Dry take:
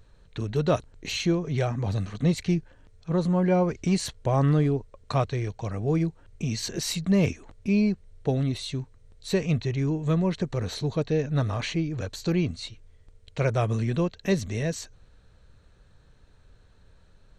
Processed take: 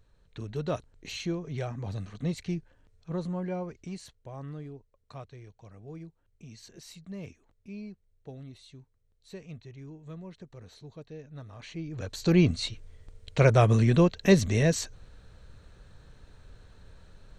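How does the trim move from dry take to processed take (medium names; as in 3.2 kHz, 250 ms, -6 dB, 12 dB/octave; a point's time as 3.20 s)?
3.15 s -8 dB
4.28 s -19 dB
11.51 s -19 dB
11.90 s -7.5 dB
12.40 s +4.5 dB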